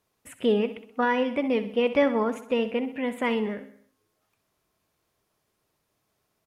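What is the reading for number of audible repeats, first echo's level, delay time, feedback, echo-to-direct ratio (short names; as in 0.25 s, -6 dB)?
4, -13.0 dB, 64 ms, 53%, -11.5 dB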